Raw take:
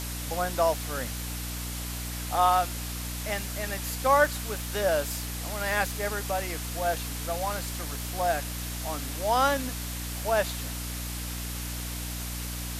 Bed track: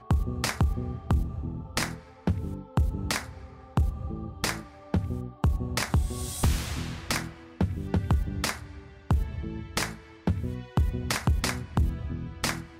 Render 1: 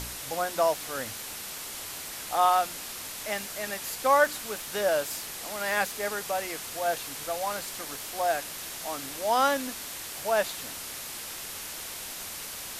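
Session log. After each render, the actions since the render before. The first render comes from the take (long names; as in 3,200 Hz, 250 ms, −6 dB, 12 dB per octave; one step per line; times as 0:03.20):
hum removal 60 Hz, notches 5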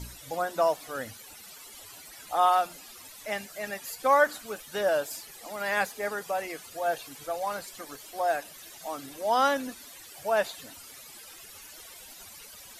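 broadband denoise 15 dB, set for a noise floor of −39 dBFS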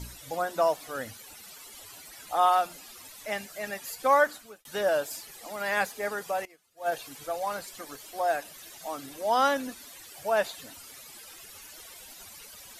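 0:04.18–0:04.65: fade out
0:06.45–0:06.92: expander for the loud parts 2.5 to 1, over −40 dBFS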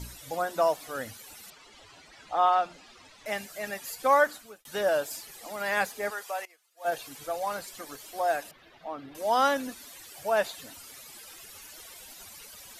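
0:01.50–0:03.26: high-frequency loss of the air 130 metres
0:06.10–0:06.85: Bessel high-pass filter 760 Hz
0:08.51–0:09.15: high-frequency loss of the air 360 metres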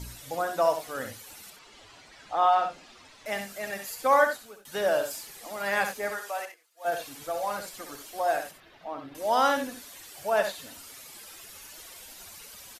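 multi-tap delay 65/90 ms −8/−14 dB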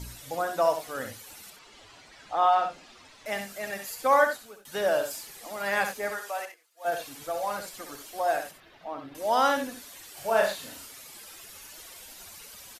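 0:10.13–0:10.87: double-tracking delay 36 ms −2.5 dB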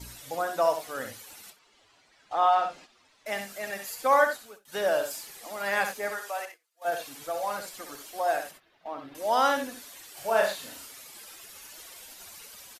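noise gate −47 dBFS, range −10 dB
low-shelf EQ 180 Hz −6 dB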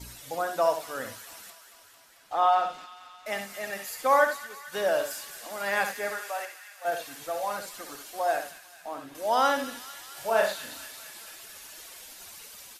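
delay with a high-pass on its return 223 ms, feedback 72%, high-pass 2,100 Hz, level −10 dB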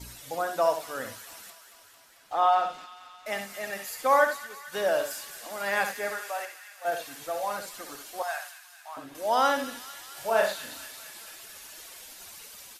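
0:01.29–0:02.33: one scale factor per block 7 bits
0:08.22–0:08.97: high-pass filter 880 Hz 24 dB per octave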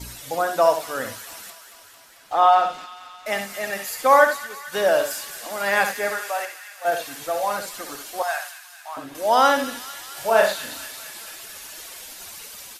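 level +7 dB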